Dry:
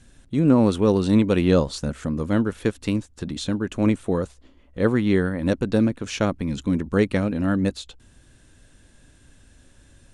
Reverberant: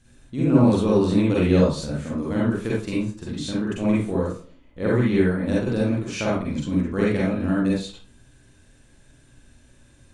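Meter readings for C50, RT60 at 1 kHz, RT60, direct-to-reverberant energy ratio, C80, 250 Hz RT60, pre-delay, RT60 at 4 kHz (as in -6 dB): -1.0 dB, 0.40 s, 0.40 s, -6.5 dB, 5.5 dB, 0.40 s, 39 ms, 0.30 s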